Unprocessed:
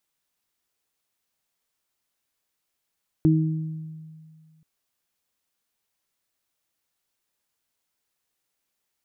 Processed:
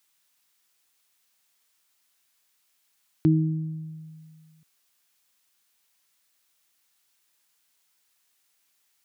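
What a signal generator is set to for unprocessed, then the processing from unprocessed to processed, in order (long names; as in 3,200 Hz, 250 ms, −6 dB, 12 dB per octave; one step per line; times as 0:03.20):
harmonic partials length 1.38 s, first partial 158 Hz, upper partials 0.5 dB, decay 2.03 s, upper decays 0.89 s, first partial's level −16 dB
high-pass filter 87 Hz
parametric band 540 Hz −3 dB 0.8 octaves
one half of a high-frequency compander encoder only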